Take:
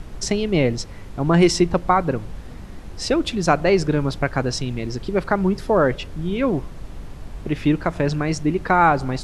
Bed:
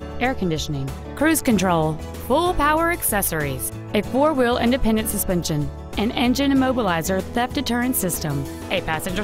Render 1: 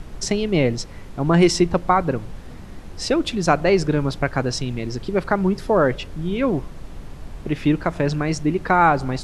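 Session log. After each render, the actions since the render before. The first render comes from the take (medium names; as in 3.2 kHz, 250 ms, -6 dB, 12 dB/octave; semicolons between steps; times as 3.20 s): de-hum 50 Hz, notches 2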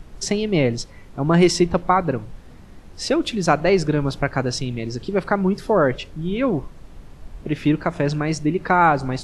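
noise print and reduce 6 dB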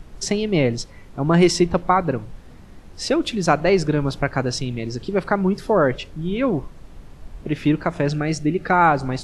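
8.09–8.73 s: Butterworth band-stop 1 kHz, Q 3.3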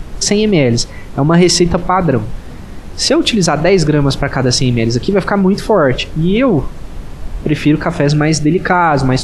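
in parallel at -1 dB: compressor with a negative ratio -25 dBFS, ratio -1; on the sum: loudness maximiser +6 dB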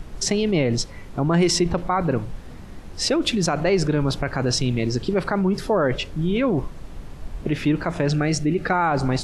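trim -9.5 dB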